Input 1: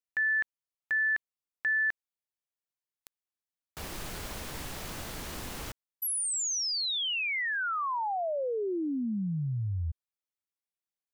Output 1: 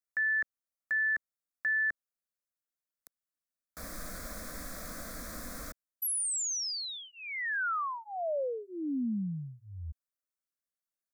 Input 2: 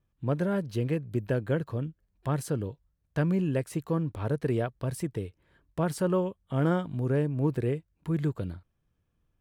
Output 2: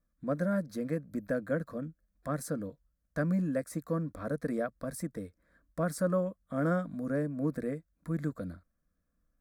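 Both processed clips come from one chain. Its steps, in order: fixed phaser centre 580 Hz, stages 8

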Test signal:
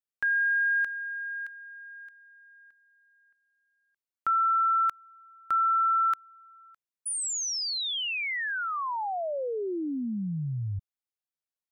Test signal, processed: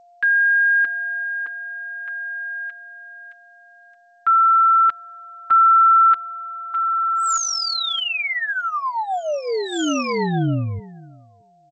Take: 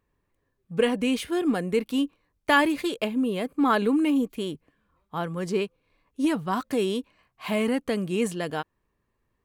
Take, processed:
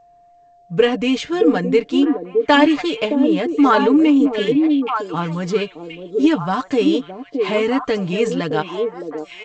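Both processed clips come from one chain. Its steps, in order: comb 6.7 ms, depth 62%; whine 700 Hz -54 dBFS; delay with a stepping band-pass 0.617 s, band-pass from 380 Hz, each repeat 1.4 oct, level -1.5 dB; gain +6 dB; G.722 64 kbps 16000 Hz

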